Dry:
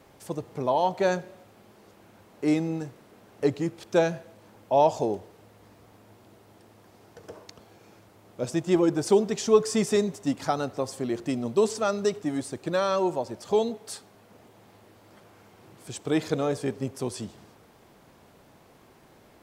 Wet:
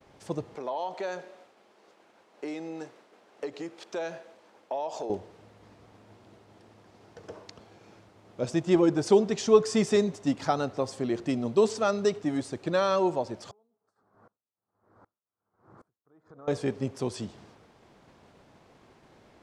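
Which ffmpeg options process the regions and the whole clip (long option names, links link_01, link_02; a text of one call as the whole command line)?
ffmpeg -i in.wav -filter_complex "[0:a]asettb=1/sr,asplit=3[link_01][link_02][link_03];[link_01]atrim=end=0.554[link_04];[link_02]atrim=start=0.55:end=5.1,asetpts=PTS-STARTPTS,afade=type=in:duration=0.004:curve=qsin,afade=type=out:start_time=4.546:duration=0.004:curve=qsin,acompressor=threshold=-27dB:ratio=10:attack=3.2:release=140:knee=1:detection=peak,highpass=380[link_05];[link_03]atrim=start=5.096[link_06];[link_04][link_05]acrossfade=duration=0.004:curve1=hsin:curve2=qsin[link_07];[link_07][link_06]acrossfade=duration=0.004:curve1=qsin:curve2=hsin,asettb=1/sr,asplit=3[link_08][link_09][link_10];[link_08]atrim=end=13.514[link_11];[link_09]atrim=start=13.51:end=16.48,asetpts=PTS-STARTPTS,afade=type=in:duration=0.004:curve=qsin,afade=type=out:start_time=2.966:duration=0.004:curve=qsin,acompressor=threshold=-39dB:ratio=10:attack=3.2:release=140:knee=1:detection=peak,highshelf=frequency=1900:width_type=q:width=3:gain=-13,aeval=exprs='val(0)*pow(10,-27*if(lt(mod(-1.3*n/s,1),2*abs(-1.3)/1000),1-mod(-1.3*n/s,1)/(2*abs(-1.3)/1000),(mod(-1.3*n/s,1)-2*abs(-1.3)/1000)/(1-2*abs(-1.3)/1000))/20)':channel_layout=same[link_12];[link_10]atrim=start=16.476[link_13];[link_11][link_12]acrossfade=duration=0.004:curve1=hsin:curve2=qsin[link_14];[link_14][link_13]acrossfade=duration=0.004:curve1=qsin:curve2=hsin,lowpass=6600,agate=range=-33dB:threshold=-53dB:ratio=3:detection=peak" out.wav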